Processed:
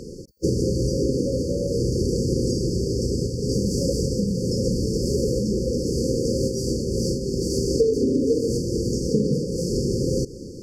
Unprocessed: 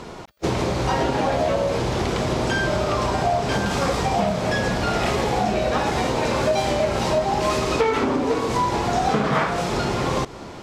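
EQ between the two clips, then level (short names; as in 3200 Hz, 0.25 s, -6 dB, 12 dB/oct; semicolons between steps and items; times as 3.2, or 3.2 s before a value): brick-wall FIR band-stop 550–4400 Hz; +2.0 dB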